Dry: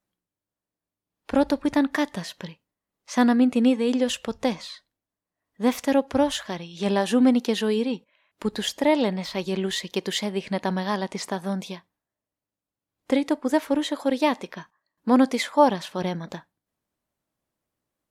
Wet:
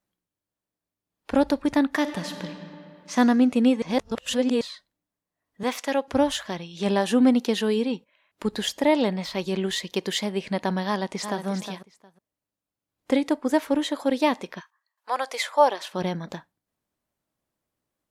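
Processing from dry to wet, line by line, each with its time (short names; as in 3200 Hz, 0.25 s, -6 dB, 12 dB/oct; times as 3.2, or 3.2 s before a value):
1.99–3.13 reverb throw, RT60 2.7 s, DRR 5.5 dB
3.82–4.61 reverse
5.63–6.08 weighting filter A
10.87–11.46 echo throw 0.36 s, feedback 15%, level -9 dB
14.59–15.92 HPF 1100 Hz -> 320 Hz 24 dB/oct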